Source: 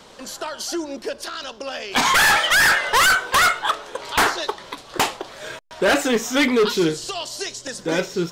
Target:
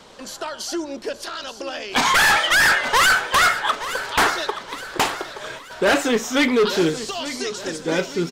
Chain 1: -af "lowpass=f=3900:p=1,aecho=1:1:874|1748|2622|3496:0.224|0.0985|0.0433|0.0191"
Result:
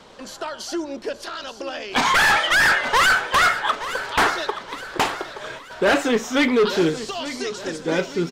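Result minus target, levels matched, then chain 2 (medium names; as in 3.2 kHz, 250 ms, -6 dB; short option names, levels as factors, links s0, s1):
8 kHz band -3.5 dB
-af "lowpass=f=10000:p=1,aecho=1:1:874|1748|2622|3496:0.224|0.0985|0.0433|0.0191"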